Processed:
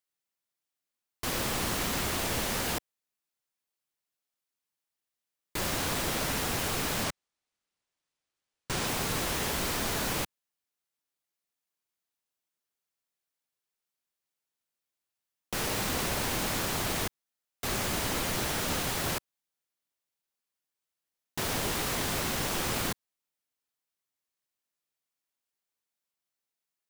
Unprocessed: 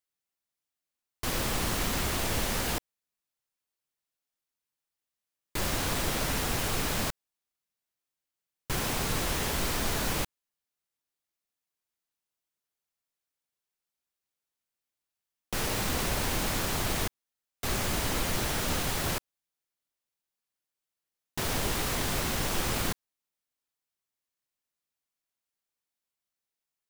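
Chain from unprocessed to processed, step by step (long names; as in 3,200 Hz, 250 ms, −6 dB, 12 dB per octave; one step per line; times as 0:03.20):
low-shelf EQ 62 Hz −10 dB
0:07.04–0:08.87: bad sample-rate conversion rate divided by 3×, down none, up hold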